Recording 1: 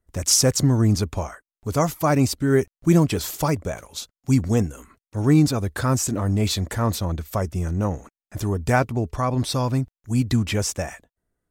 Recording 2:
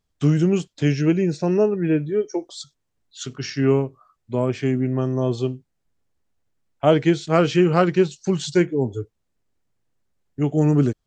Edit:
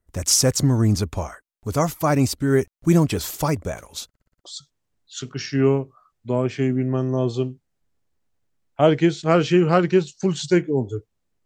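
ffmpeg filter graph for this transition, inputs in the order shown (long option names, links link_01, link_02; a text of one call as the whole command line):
ffmpeg -i cue0.wav -i cue1.wav -filter_complex "[0:a]apad=whole_dur=11.45,atrim=end=11.45,asplit=6[link_01][link_02][link_03][link_04][link_05][link_06];[link_01]atrim=end=4.142[link_07];[link_02]atrim=start=4.078:end=4.142[link_08];[link_03]atrim=start=4.078:end=4.142[link_09];[link_04]atrim=start=4.078:end=4.142[link_10];[link_05]atrim=start=4.078:end=4.142[link_11];[link_06]atrim=start=4.078:end=4.142[link_12];[1:a]atrim=start=2.478:end=9.49[link_13];[link_07][link_08]acrossfade=duration=0.004:curve1=hsin:curve2=hsin[link_14];[link_14][link_09]acrossfade=duration=0.004:curve1=hsin:curve2=hsin[link_15];[link_15][link_10]acrossfade=duration=0.004:curve1=hsin:curve2=hsin[link_16];[link_16][link_11]acrossfade=duration=0.004:curve1=hsin:curve2=hsin[link_17];[link_17][link_12]acrossfade=duration=0.004:curve1=hsin:curve2=hsin[link_18];[link_18][link_13]acrossfade=duration=0.004:curve1=hsin:curve2=hsin" out.wav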